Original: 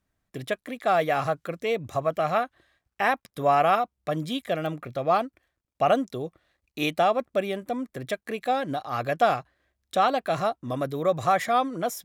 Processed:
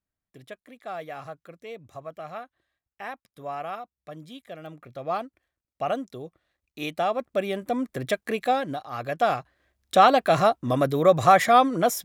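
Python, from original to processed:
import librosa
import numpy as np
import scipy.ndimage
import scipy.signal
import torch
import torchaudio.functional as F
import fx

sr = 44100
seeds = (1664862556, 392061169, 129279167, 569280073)

y = fx.gain(x, sr, db=fx.line((4.54, -13.0), (5.11, -6.0), (6.79, -6.0), (7.84, 4.0), (8.41, 4.0), (8.89, -5.0), (9.99, 6.0)))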